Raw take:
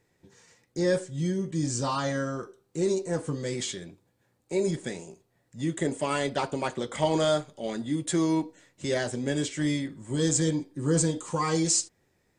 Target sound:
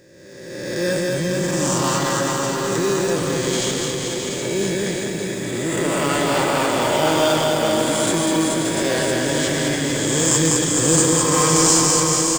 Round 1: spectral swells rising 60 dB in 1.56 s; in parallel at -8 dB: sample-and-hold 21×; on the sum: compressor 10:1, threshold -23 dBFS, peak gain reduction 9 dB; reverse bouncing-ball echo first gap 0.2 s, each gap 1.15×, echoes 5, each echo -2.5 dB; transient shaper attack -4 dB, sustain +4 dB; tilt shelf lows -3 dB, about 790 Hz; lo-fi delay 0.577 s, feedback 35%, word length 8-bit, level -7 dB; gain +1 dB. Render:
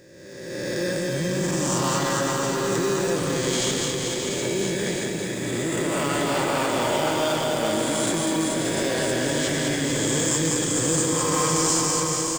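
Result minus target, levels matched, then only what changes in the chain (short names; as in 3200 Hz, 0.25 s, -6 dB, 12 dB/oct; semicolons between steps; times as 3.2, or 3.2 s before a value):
compressor: peak gain reduction +9 dB
remove: compressor 10:1, threshold -23 dBFS, peak gain reduction 9 dB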